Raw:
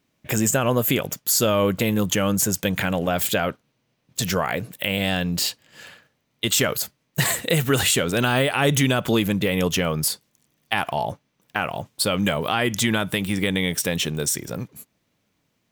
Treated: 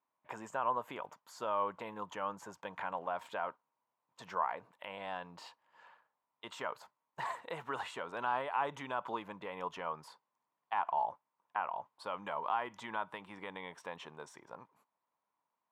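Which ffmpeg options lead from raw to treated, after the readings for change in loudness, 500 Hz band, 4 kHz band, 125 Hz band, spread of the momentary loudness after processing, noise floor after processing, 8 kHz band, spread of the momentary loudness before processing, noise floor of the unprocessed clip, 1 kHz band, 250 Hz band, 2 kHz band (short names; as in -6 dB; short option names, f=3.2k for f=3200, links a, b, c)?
-17.5 dB, -18.0 dB, -27.0 dB, -32.5 dB, 15 LU, under -85 dBFS, -36.0 dB, 9 LU, -72 dBFS, -7.0 dB, -27.5 dB, -18.5 dB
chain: -af "lowpass=f=970:t=q:w=6.1,aderivative,volume=1dB"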